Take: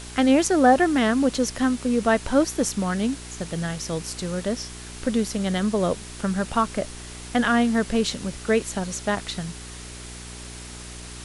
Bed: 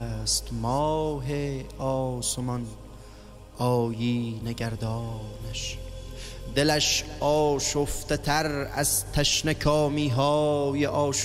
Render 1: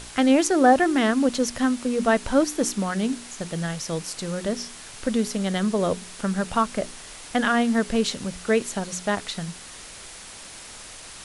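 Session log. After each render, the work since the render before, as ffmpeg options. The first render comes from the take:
-af "bandreject=f=60:t=h:w=4,bandreject=f=120:t=h:w=4,bandreject=f=180:t=h:w=4,bandreject=f=240:t=h:w=4,bandreject=f=300:t=h:w=4,bandreject=f=360:t=h:w=4,bandreject=f=420:t=h:w=4"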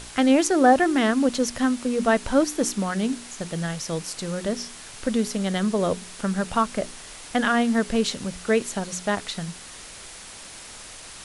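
-af anull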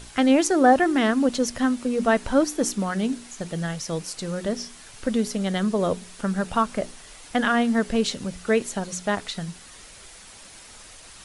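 -af "afftdn=nr=6:nf=-42"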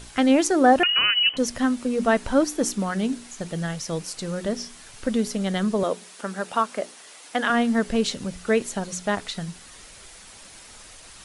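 -filter_complex "[0:a]asettb=1/sr,asplit=3[s0][s1][s2];[s0]atrim=end=0.834[s3];[s1]atrim=start=0.83:end=1.37,asetpts=PTS-STARTPTS,afade=t=in:d=0.004:c=qsin,afade=t=out:st=0.536:d=0.004:c=qsin,lowpass=f=2700:t=q:w=0.5098,lowpass=f=2700:t=q:w=0.6013,lowpass=f=2700:t=q:w=0.9,lowpass=f=2700:t=q:w=2.563,afreqshift=-3200[s4];[s2]atrim=start=1.366[s5];[s3][s4]acrossfade=d=0.004:c1=hsin:c2=qsin[s6];[s6][s5]acrossfade=d=0.004:c1=qsin:c2=hsin,asettb=1/sr,asplit=3[s7][s8][s9];[s7]atrim=end=5.834[s10];[s8]atrim=start=5.83:end=7.5,asetpts=PTS-STARTPTS,afade=t=in:d=0.004:c=qsin,afade=t=out:st=1.666:d=0.004:c=qsin,highpass=320[s11];[s9]atrim=start=7.496[s12];[s10][s11]acrossfade=d=0.004:c1=hsin:c2=qsin[s13];[s13][s12]acrossfade=d=0.004:c1=qsin:c2=hsin"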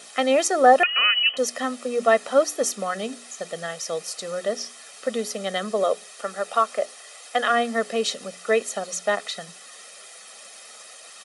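-af "highpass=f=270:w=0.5412,highpass=f=270:w=1.3066,aecho=1:1:1.6:0.72"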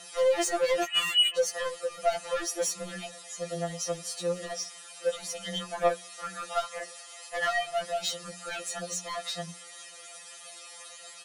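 -af "asoftclip=type=tanh:threshold=0.0841,afftfilt=real='re*2.83*eq(mod(b,8),0)':imag='im*2.83*eq(mod(b,8),0)':win_size=2048:overlap=0.75"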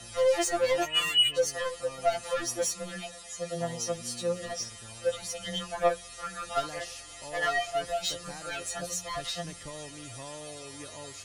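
-filter_complex "[1:a]volume=0.0891[s0];[0:a][s0]amix=inputs=2:normalize=0"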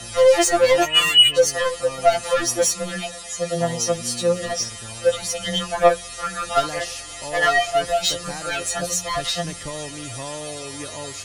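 -af "volume=3.35"

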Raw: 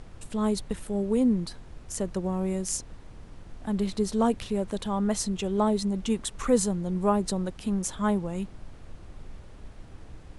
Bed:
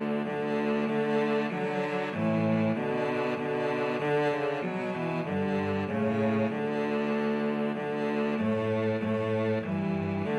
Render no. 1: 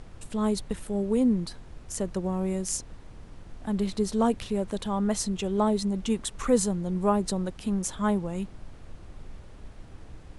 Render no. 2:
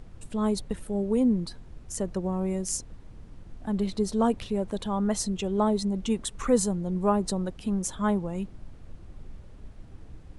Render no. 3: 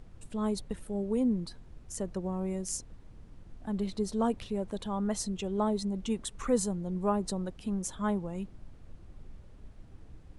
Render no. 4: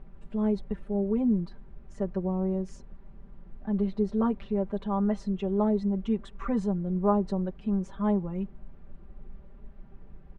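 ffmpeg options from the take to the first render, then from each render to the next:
-af anull
-af "afftdn=nr=6:nf=-47"
-af "volume=0.562"
-af "lowpass=1900,aecho=1:1:5.1:0.89"

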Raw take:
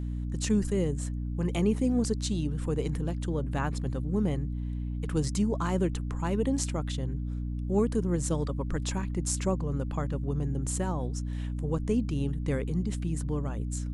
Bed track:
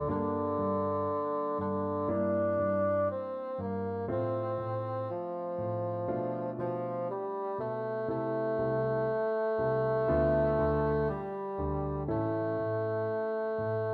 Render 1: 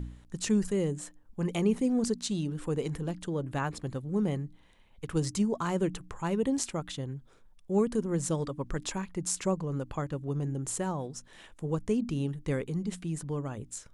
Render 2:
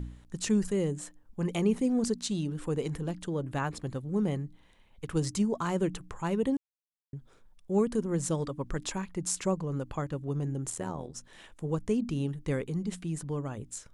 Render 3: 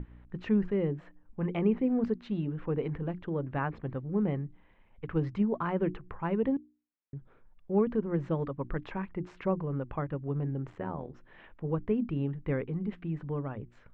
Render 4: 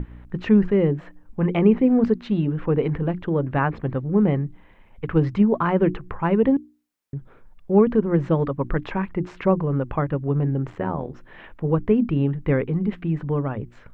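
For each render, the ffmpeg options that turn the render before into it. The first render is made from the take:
-af "bandreject=f=60:t=h:w=4,bandreject=f=120:t=h:w=4,bandreject=f=180:t=h:w=4,bandreject=f=240:t=h:w=4,bandreject=f=300:t=h:w=4"
-filter_complex "[0:a]asettb=1/sr,asplit=3[s0][s1][s2];[s0]atrim=end=10.704[s3];[s1]atrim=start=10.7:end=11.15,asetpts=PTS-STARTPTS,afade=t=in:d=0.004:c=qsin,afade=t=out:st=0.446:d=0.004:c=qsin,tremolo=f=81:d=0.857[s4];[s2]atrim=start=11.146[s5];[s3][s4]acrossfade=d=0.004:c1=hsin:c2=qsin[s6];[s6][s5]acrossfade=d=0.004:c1=qsin:c2=hsin,asplit=3[s7][s8][s9];[s7]atrim=end=6.57,asetpts=PTS-STARTPTS,afade=t=out:st=6.566:d=0.004:c=hsin[s10];[s8]atrim=start=6.57:end=7.13,asetpts=PTS-STARTPTS,volume=0[s11];[s9]atrim=start=7.13,asetpts=PTS-STARTPTS,afade=t=in:d=0.004:c=hsin[s12];[s10][s11][s12]concat=n=3:v=0:a=1"
-af "lowpass=f=2400:w=0.5412,lowpass=f=2400:w=1.3066,bandreject=f=60:t=h:w=6,bandreject=f=120:t=h:w=6,bandreject=f=180:t=h:w=6,bandreject=f=240:t=h:w=6,bandreject=f=300:t=h:w=6,bandreject=f=360:t=h:w=6"
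-af "volume=3.35"

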